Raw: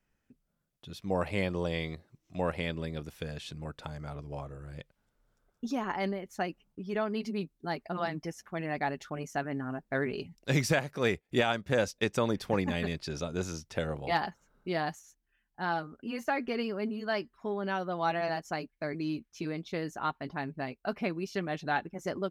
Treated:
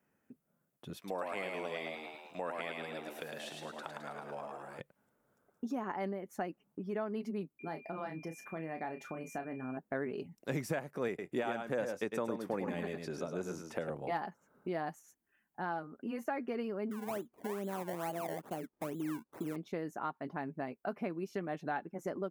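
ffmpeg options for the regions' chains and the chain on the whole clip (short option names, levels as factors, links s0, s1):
-filter_complex "[0:a]asettb=1/sr,asplit=3[s0][s1][s2];[s0]atrim=end=0.974[s3];[s1]atrim=start=0.97:end=4.8,asetpts=PTS-STARTPTS,afade=t=in:d=0.004:c=qsin,afade=t=out:st=3.826:d=0.004:c=qsin,highpass=f=810:p=1,equalizer=f=3400:t=o:w=2:g=4.5,asplit=8[s4][s5][s6][s7][s8][s9][s10][s11];[s5]adelay=107,afreqshift=71,volume=0.668[s12];[s6]adelay=214,afreqshift=142,volume=0.347[s13];[s7]adelay=321,afreqshift=213,volume=0.18[s14];[s8]adelay=428,afreqshift=284,volume=0.0944[s15];[s9]adelay=535,afreqshift=355,volume=0.049[s16];[s10]adelay=642,afreqshift=426,volume=0.0254[s17];[s11]adelay=749,afreqshift=497,volume=0.0132[s18];[s4][s12][s13][s14][s15][s16][s17][s18]amix=inputs=8:normalize=0,atrim=end_sample=168903[s19];[s2]atrim=start=4.796[s20];[s3][s19]acrossfade=d=0.004:c1=hsin:c2=qsin[s21];[s21][s20]acrossfade=d=0.004:c1=qsin:c2=hsin,asettb=1/sr,asplit=3[s22][s23][s24];[s22]atrim=end=7.594[s25];[s23]atrim=start=7.59:end=9.77,asetpts=PTS-STARTPTS,afade=t=in:d=0.004:c=qsin,afade=t=out:st=2.176:d=0.004:c=qsin,acompressor=threshold=0.00562:ratio=1.5:attack=3.2:release=140:knee=1:detection=peak,aeval=exprs='val(0)+0.00447*sin(2*PI*2400*n/s)':c=same,asplit=2[s26][s27];[s27]adelay=31,volume=0.398[s28];[s26][s28]amix=inputs=2:normalize=0,atrim=end_sample=96138[s29];[s24]atrim=start=9.766[s30];[s25][s29]acrossfade=d=0.004:c1=hsin:c2=qsin[s31];[s31][s30]acrossfade=d=0.004:c1=qsin:c2=hsin,asettb=1/sr,asplit=3[s32][s33][s34];[s32]atrim=end=11.084[s35];[s33]atrim=start=11.08:end=13.9,asetpts=PTS-STARTPTS,afade=t=in:d=0.004:c=qsin,afade=t=out:st=2.816:d=0.004:c=qsin,highpass=f=140:p=1,aecho=1:1:104|126:0.473|0.106,atrim=end_sample=124362[s36];[s34]atrim=start=13.896[s37];[s35][s36]acrossfade=d=0.004:c1=hsin:c2=qsin[s38];[s38][s37]acrossfade=d=0.004:c1=qsin:c2=hsin,asettb=1/sr,asplit=3[s39][s40][s41];[s39]atrim=end=16.914[s42];[s40]atrim=start=16.91:end=19.56,asetpts=PTS-STARTPTS,afade=t=in:d=0.004:c=qsin,afade=t=out:st=2.646:d=0.004:c=qsin,equalizer=f=1800:t=o:w=1.8:g=-11.5,acompressor=mode=upward:threshold=0.00282:ratio=2.5:attack=3.2:release=140:knee=2.83:detection=peak,acrusher=samples=24:mix=1:aa=0.000001:lfo=1:lforange=24:lforate=2.3[s43];[s41]atrim=start=19.556[s44];[s42][s43]acrossfade=d=0.004:c1=hsin:c2=qsin[s45];[s45][s44]acrossfade=d=0.004:c1=qsin:c2=hsin,highpass=180,equalizer=f=4200:w=0.72:g=-13.5,acompressor=threshold=0.00398:ratio=2,volume=2"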